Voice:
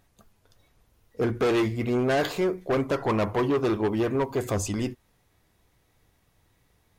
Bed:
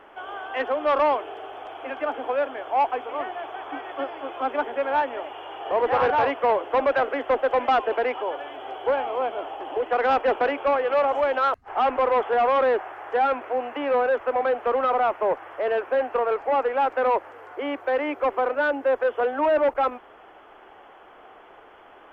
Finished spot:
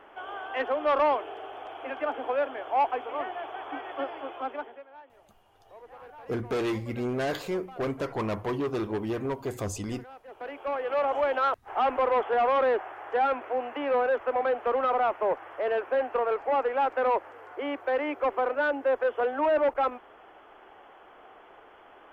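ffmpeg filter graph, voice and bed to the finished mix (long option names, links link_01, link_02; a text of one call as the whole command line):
ffmpeg -i stem1.wav -i stem2.wav -filter_complex "[0:a]adelay=5100,volume=-5.5dB[link_01];[1:a]volume=20.5dB,afade=type=out:start_time=4.16:duration=0.69:silence=0.0630957,afade=type=in:start_time=10.28:duration=0.91:silence=0.0668344[link_02];[link_01][link_02]amix=inputs=2:normalize=0" out.wav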